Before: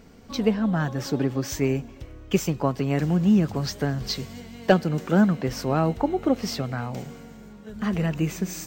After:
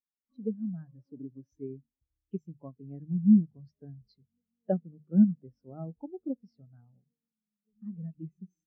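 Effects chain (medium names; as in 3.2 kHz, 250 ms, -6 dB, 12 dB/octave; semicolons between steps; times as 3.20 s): hum notches 50/100/150 Hz; spectral contrast expander 2.5:1; trim -5.5 dB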